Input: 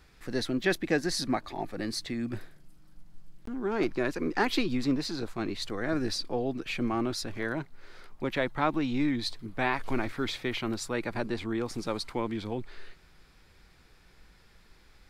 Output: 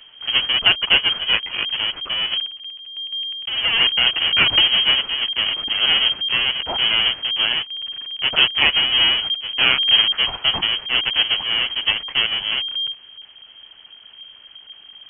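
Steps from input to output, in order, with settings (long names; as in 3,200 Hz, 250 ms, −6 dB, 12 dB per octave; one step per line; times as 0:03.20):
each half-wave held at its own peak
voice inversion scrambler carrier 3,200 Hz
level +6.5 dB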